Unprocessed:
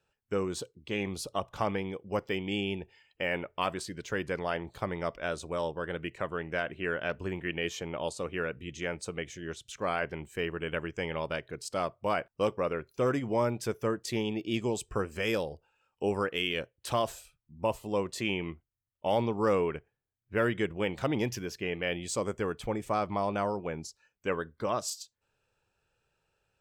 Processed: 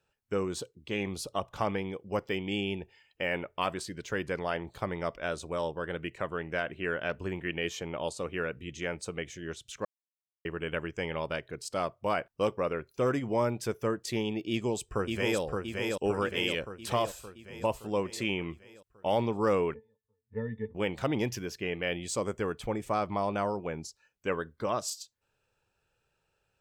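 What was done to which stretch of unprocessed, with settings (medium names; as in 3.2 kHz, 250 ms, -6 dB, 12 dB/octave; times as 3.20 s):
9.85–10.45 s: mute
14.50–15.40 s: echo throw 570 ms, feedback 60%, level -3 dB
19.74–20.75 s: pitch-class resonator A, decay 0.11 s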